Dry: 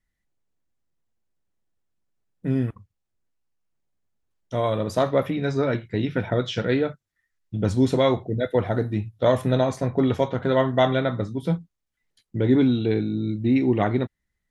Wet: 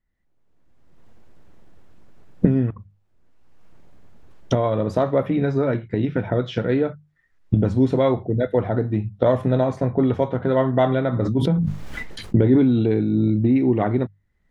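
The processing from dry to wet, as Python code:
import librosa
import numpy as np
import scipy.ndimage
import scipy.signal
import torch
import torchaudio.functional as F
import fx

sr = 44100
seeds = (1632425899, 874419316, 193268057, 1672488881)

y = fx.recorder_agc(x, sr, target_db=-13.0, rise_db_per_s=28.0, max_gain_db=30)
y = fx.lowpass(y, sr, hz=1200.0, slope=6)
y = fx.hum_notches(y, sr, base_hz=50, count=4)
y = fx.sustainer(y, sr, db_per_s=25.0, at=(11.12, 13.42), fade=0.02)
y = y * 10.0 ** (2.0 / 20.0)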